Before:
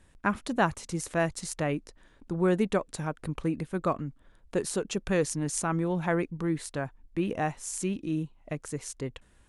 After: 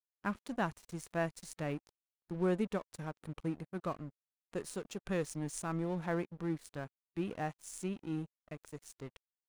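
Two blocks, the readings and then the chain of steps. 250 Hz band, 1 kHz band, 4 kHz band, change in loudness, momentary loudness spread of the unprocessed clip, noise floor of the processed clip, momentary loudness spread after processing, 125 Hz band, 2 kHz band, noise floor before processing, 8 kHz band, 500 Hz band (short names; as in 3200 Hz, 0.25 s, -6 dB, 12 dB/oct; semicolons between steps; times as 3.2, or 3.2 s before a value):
-8.0 dB, -9.5 dB, -11.0 dB, -8.5 dB, 9 LU, under -85 dBFS, 12 LU, -8.0 dB, -9.5 dB, -61 dBFS, -12.5 dB, -8.5 dB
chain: crossover distortion -42 dBFS; harmonic-percussive split percussive -4 dB; gain -6 dB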